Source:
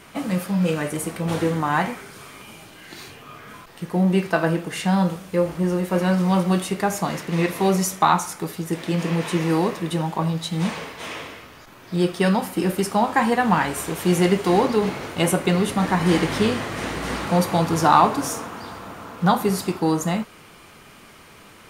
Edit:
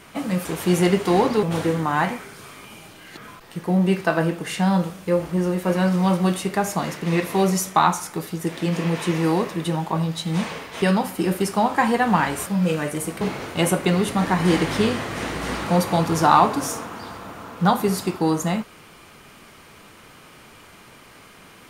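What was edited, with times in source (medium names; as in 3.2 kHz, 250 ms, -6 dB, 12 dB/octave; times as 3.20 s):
0.45–1.20 s: swap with 13.84–14.82 s
2.94–3.43 s: delete
11.08–12.20 s: delete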